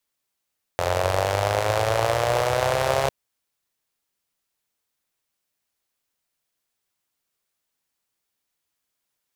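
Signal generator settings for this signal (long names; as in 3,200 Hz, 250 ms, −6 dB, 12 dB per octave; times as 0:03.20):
pulse-train model of a four-cylinder engine, changing speed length 2.30 s, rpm 2,600, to 4,100, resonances 96/580 Hz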